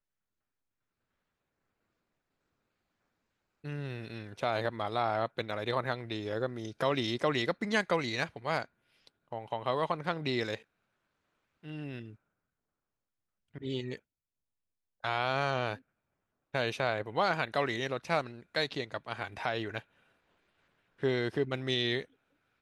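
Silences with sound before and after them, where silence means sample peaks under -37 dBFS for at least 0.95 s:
10.55–11.68
12.04–13.56
13.96–15.04
19.79–21.03

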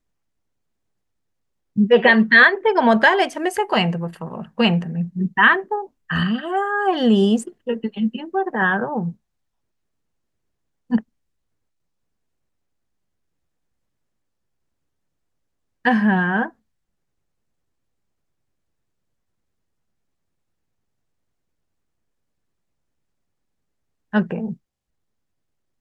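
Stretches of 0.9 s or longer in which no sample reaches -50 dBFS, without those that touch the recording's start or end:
9.15–10.9
11.03–15.85
16.52–24.12

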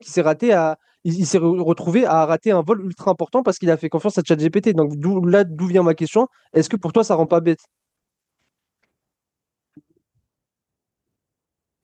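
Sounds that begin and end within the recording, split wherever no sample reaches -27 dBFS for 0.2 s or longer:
1.05–6.25
6.54–7.54

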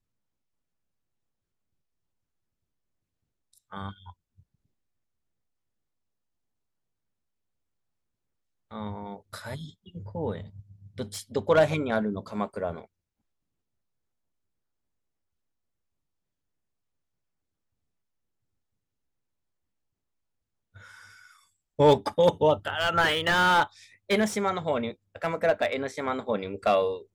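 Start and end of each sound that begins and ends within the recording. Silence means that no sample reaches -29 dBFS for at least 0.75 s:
3.73–3.9
8.73–12.79

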